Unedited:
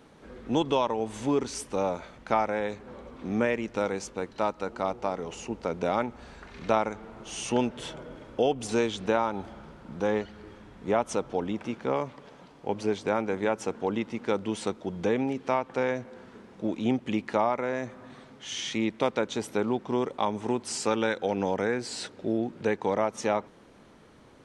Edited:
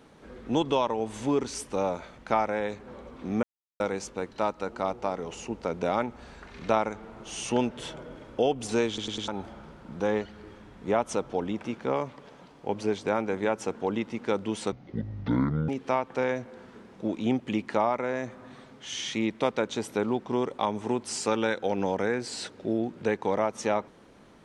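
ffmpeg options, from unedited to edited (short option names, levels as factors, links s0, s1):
-filter_complex "[0:a]asplit=9[s0][s1][s2][s3][s4][s5][s6][s7][s8];[s0]atrim=end=3.43,asetpts=PTS-STARTPTS,afade=t=out:st=3.426:d=0.004:c=hsin[s9];[s1]atrim=start=3.43:end=3.8,asetpts=PTS-STARTPTS,volume=0[s10];[s2]atrim=start=3.8:end=8.982,asetpts=PTS-STARTPTS,afade=t=in:d=0.004:c=hsin[s11];[s3]atrim=start=8.878:end=8.982[s12];[s4]atrim=start=8.878:end=8.982[s13];[s5]atrim=start=8.878:end=8.982[s14];[s6]atrim=start=9.278:end=14.724[s15];[s7]atrim=start=14.72:end=15.28,asetpts=PTS-STARTPTS,asetrate=25578,aresample=44100,atrim=end_sample=42579,asetpts=PTS-STARTPTS[s16];[s8]atrim=start=15.276[s17];[s9][s10][s11]concat=n=3:v=0:a=1[s18];[s18][s12]acrossfade=d=0.004:c1=hsin:c2=hsin[s19];[s19][s13]acrossfade=d=0.004:c1=hsin:c2=hsin[s20];[s20][s14]acrossfade=d=0.004:c1=hsin:c2=hsin[s21];[s21][s15]acrossfade=d=0.004:c1=hsin:c2=hsin[s22];[s22][s16]acrossfade=d=0.004:c1=hsin:c2=hsin[s23];[s23][s17]acrossfade=d=0.004:c1=hsin:c2=hsin"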